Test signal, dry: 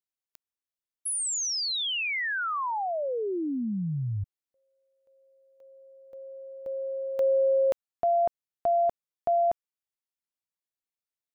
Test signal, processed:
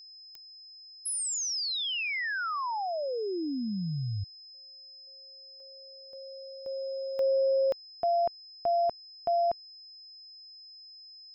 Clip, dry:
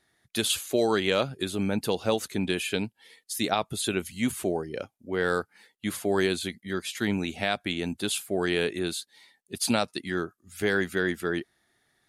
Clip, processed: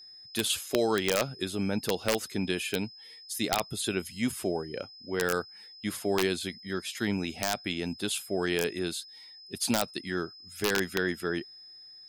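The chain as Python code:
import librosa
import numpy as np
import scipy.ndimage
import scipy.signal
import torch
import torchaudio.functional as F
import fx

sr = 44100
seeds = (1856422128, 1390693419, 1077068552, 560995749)

y = (np.mod(10.0 ** (13.0 / 20.0) * x + 1.0, 2.0) - 1.0) / 10.0 ** (13.0 / 20.0)
y = y + 10.0 ** (-45.0 / 20.0) * np.sin(2.0 * np.pi * 5100.0 * np.arange(len(y)) / sr)
y = y * 10.0 ** (-2.5 / 20.0)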